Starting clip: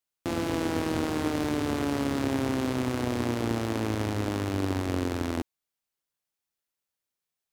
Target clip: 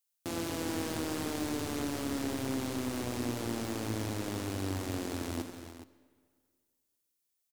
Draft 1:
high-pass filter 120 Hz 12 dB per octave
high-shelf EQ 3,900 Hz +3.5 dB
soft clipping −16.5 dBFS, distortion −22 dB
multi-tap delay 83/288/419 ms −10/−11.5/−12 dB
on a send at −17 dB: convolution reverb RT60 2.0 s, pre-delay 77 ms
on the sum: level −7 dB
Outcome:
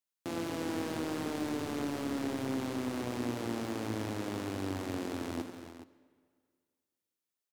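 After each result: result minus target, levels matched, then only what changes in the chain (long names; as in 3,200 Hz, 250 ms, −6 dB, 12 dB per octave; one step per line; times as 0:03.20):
8,000 Hz band −5.5 dB; 125 Hz band −2.5 dB
change: high-shelf EQ 3,900 Hz +14.5 dB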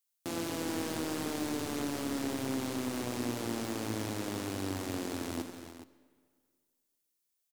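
125 Hz band −3.0 dB
change: high-pass filter 56 Hz 12 dB per octave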